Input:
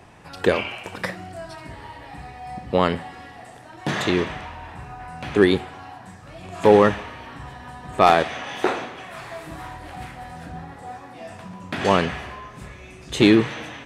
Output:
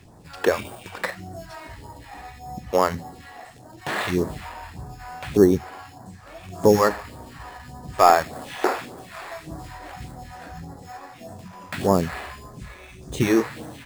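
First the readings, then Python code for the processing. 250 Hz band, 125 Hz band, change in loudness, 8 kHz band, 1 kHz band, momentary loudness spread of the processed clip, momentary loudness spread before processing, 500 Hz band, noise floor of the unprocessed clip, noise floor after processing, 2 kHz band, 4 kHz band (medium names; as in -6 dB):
-2.5 dB, -1.0 dB, -1.5 dB, +4.0 dB, -0.5 dB, 23 LU, 22 LU, -1.5 dB, -43 dBFS, -46 dBFS, -3.5 dB, -6.0 dB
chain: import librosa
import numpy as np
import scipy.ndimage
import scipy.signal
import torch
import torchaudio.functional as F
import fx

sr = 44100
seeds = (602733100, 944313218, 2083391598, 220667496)

p1 = fx.env_lowpass_down(x, sr, base_hz=1800.0, full_db=-17.0)
p2 = fx.sample_hold(p1, sr, seeds[0], rate_hz=6000.0, jitter_pct=0)
p3 = p1 + F.gain(torch.from_numpy(p2), -3.0).numpy()
p4 = fx.phaser_stages(p3, sr, stages=2, low_hz=110.0, high_hz=2500.0, hz=1.7, feedback_pct=25)
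y = F.gain(torch.from_numpy(p4), -3.5).numpy()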